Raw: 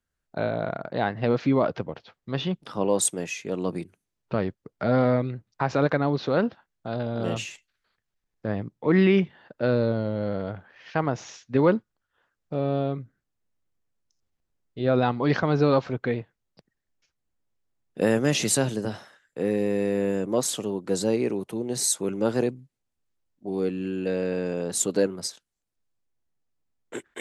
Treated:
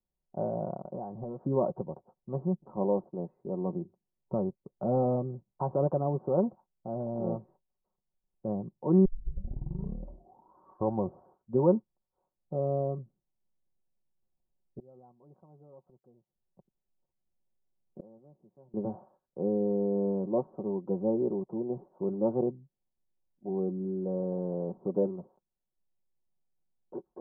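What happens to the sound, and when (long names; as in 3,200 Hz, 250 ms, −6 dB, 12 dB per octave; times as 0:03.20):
0:00.76–0:01.41: downward compressor, threshold −28 dBFS
0:09.05: tape start 2.63 s
0:14.79–0:18.74: gate with flip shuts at −27 dBFS, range −29 dB
whole clip: Butterworth low-pass 990 Hz 48 dB per octave; comb filter 5.4 ms, depth 57%; level −5.5 dB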